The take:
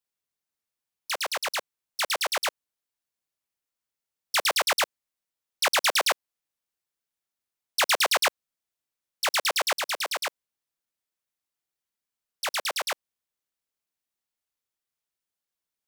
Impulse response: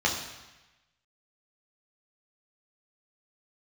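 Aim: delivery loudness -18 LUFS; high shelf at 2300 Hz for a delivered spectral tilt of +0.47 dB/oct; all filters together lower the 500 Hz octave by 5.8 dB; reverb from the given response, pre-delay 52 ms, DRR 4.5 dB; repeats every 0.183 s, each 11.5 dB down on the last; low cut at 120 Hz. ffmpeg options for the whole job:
-filter_complex "[0:a]highpass=120,equalizer=f=500:t=o:g=-8,highshelf=f=2.3k:g=7,aecho=1:1:183|366|549:0.266|0.0718|0.0194,asplit=2[a][b];[1:a]atrim=start_sample=2205,adelay=52[c];[b][c]afir=irnorm=-1:irlink=0,volume=-17dB[d];[a][d]amix=inputs=2:normalize=0,volume=3dB"

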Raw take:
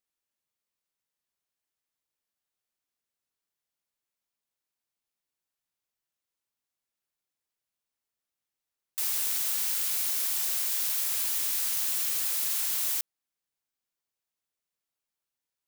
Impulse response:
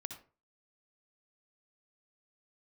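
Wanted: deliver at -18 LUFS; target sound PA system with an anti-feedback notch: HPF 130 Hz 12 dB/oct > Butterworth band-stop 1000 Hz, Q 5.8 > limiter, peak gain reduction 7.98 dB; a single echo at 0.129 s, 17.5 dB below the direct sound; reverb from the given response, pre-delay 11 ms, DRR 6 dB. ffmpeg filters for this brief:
-filter_complex "[0:a]aecho=1:1:129:0.133,asplit=2[a][b];[1:a]atrim=start_sample=2205,adelay=11[c];[b][c]afir=irnorm=-1:irlink=0,volume=-3.5dB[d];[a][d]amix=inputs=2:normalize=0,highpass=130,asuperstop=centerf=1000:order=8:qfactor=5.8,volume=12dB,alimiter=limit=-11.5dB:level=0:latency=1"

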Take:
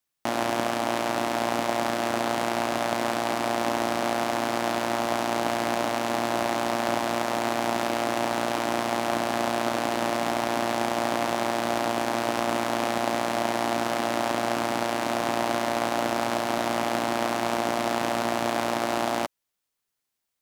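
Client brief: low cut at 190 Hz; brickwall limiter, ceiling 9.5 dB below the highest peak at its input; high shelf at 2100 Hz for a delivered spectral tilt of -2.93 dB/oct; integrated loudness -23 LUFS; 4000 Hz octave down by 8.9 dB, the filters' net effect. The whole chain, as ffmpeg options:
-af "highpass=190,highshelf=f=2.1k:g=-6.5,equalizer=f=4k:t=o:g=-5.5,volume=9.5dB,alimiter=limit=-11.5dB:level=0:latency=1"

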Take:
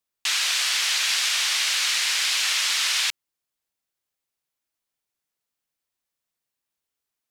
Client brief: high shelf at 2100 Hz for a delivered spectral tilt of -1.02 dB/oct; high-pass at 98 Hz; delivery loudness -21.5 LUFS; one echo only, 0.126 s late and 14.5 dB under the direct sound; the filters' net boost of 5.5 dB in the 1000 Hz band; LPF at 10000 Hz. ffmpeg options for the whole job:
-af "highpass=98,lowpass=10k,equalizer=f=1k:t=o:g=5.5,highshelf=f=2.1k:g=5.5,aecho=1:1:126:0.188,volume=-5dB"

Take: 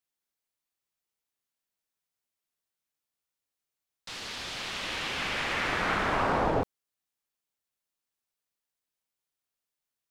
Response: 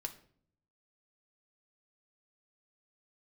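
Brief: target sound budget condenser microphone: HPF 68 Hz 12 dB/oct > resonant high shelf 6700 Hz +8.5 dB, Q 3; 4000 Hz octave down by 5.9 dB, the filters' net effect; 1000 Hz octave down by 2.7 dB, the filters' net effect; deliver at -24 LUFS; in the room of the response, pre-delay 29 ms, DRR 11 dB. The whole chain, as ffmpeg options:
-filter_complex "[0:a]equalizer=f=1k:t=o:g=-3,equalizer=f=4k:t=o:g=-4.5,asplit=2[a][b];[1:a]atrim=start_sample=2205,adelay=29[c];[b][c]afir=irnorm=-1:irlink=0,volume=-9.5dB[d];[a][d]amix=inputs=2:normalize=0,highpass=68,highshelf=f=6.7k:t=q:w=3:g=8.5,volume=7.5dB"

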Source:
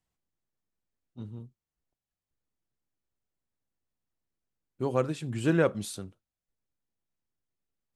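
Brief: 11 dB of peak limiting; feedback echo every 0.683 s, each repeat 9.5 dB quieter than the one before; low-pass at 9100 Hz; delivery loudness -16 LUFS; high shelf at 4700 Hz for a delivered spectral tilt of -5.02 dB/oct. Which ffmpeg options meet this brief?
-af "lowpass=9.1k,highshelf=f=4.7k:g=8,alimiter=limit=-23dB:level=0:latency=1,aecho=1:1:683|1366|2049|2732:0.335|0.111|0.0365|0.012,volume=20.5dB"

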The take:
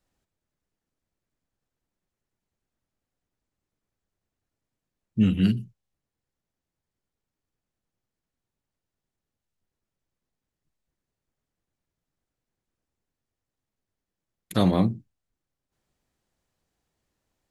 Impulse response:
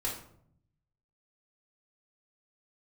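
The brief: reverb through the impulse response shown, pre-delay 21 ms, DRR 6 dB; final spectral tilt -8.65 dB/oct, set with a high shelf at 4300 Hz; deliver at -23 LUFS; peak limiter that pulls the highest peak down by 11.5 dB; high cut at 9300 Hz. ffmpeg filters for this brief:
-filter_complex "[0:a]lowpass=9.3k,highshelf=f=4.3k:g=-7,alimiter=limit=-19dB:level=0:latency=1,asplit=2[a][b];[1:a]atrim=start_sample=2205,adelay=21[c];[b][c]afir=irnorm=-1:irlink=0,volume=-10dB[d];[a][d]amix=inputs=2:normalize=0,volume=7.5dB"

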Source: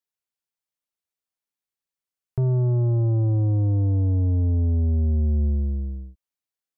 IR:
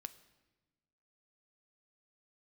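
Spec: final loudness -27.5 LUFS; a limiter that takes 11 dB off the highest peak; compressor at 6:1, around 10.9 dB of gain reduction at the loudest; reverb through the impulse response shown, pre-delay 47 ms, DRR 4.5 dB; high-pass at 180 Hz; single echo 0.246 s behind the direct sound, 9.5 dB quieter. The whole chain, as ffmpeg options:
-filter_complex "[0:a]highpass=180,acompressor=threshold=-36dB:ratio=6,alimiter=level_in=12dB:limit=-24dB:level=0:latency=1,volume=-12dB,aecho=1:1:246:0.335,asplit=2[a][b];[1:a]atrim=start_sample=2205,adelay=47[c];[b][c]afir=irnorm=-1:irlink=0,volume=0dB[d];[a][d]amix=inputs=2:normalize=0,volume=14.5dB"

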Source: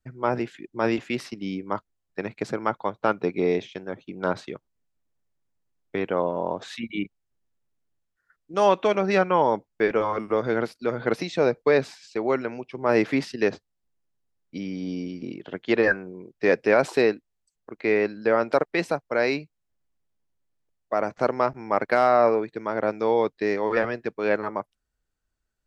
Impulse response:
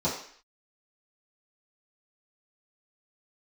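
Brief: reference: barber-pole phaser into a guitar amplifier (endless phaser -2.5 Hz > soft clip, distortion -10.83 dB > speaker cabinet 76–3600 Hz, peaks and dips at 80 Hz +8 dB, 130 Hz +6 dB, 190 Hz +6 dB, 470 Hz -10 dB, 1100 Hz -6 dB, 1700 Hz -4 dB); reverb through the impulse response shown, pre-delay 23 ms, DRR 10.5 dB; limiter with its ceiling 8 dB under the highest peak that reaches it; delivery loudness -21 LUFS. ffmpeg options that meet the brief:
-filter_complex "[0:a]alimiter=limit=-13.5dB:level=0:latency=1,asplit=2[a][b];[1:a]atrim=start_sample=2205,adelay=23[c];[b][c]afir=irnorm=-1:irlink=0,volume=-20.5dB[d];[a][d]amix=inputs=2:normalize=0,asplit=2[e][f];[f]afreqshift=-2.5[g];[e][g]amix=inputs=2:normalize=1,asoftclip=threshold=-24.5dB,highpass=76,equalizer=f=80:t=q:w=4:g=8,equalizer=f=130:t=q:w=4:g=6,equalizer=f=190:t=q:w=4:g=6,equalizer=f=470:t=q:w=4:g=-10,equalizer=f=1.1k:t=q:w=4:g=-6,equalizer=f=1.7k:t=q:w=4:g=-4,lowpass=f=3.6k:w=0.5412,lowpass=f=3.6k:w=1.3066,volume=14dB"

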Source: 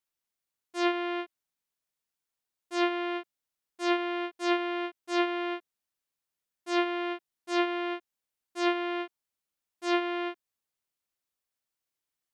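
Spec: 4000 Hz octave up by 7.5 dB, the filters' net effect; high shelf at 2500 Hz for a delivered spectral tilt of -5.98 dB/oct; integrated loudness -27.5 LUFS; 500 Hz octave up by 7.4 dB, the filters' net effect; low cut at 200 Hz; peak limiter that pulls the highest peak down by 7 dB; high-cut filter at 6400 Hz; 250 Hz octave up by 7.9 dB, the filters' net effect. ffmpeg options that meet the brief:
-af "highpass=200,lowpass=6.4k,equalizer=f=250:t=o:g=8.5,equalizer=f=500:t=o:g=8,highshelf=f=2.5k:g=5,equalizer=f=4k:t=o:g=6,volume=-0.5dB,alimiter=limit=-14.5dB:level=0:latency=1"

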